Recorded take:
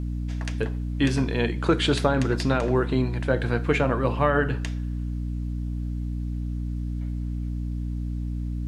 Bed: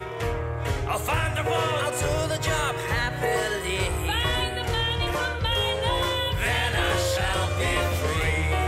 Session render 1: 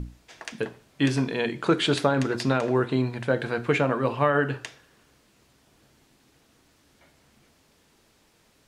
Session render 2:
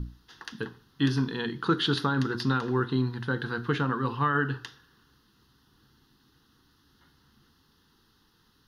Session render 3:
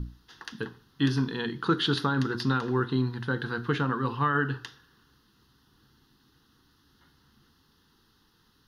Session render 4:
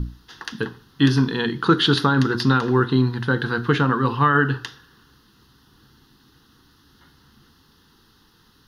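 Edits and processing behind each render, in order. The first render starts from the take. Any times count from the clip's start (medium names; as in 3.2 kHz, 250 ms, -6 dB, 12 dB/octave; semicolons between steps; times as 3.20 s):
hum notches 60/120/180/240/300/360 Hz
static phaser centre 2.3 kHz, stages 6
no audible change
trim +8.5 dB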